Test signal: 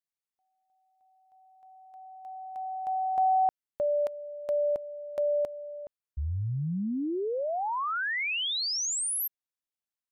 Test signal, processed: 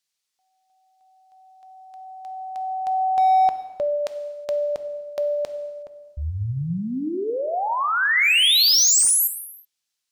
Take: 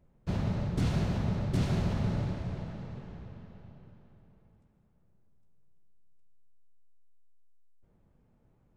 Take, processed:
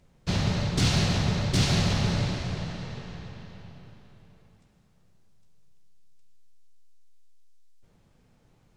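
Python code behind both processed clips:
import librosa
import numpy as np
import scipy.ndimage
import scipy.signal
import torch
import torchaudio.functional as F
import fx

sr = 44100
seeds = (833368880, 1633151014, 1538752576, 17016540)

y = fx.peak_eq(x, sr, hz=5000.0, db=15.0, octaves=2.7)
y = np.clip(y, -10.0 ** (-19.0 / 20.0), 10.0 ** (-19.0 / 20.0))
y = fx.rev_gated(y, sr, seeds[0], gate_ms=390, shape='falling', drr_db=8.5)
y = y * 10.0 ** (3.5 / 20.0)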